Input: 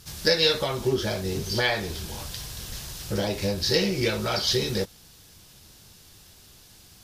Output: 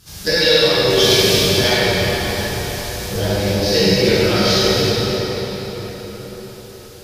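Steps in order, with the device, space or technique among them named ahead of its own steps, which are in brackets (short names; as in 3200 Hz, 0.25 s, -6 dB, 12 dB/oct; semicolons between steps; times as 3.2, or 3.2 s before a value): 0.9–1.37 resonant high shelf 1900 Hz +11.5 dB, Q 1.5; cathedral (reverb RT60 5.3 s, pre-delay 10 ms, DRR -11 dB); gain -1 dB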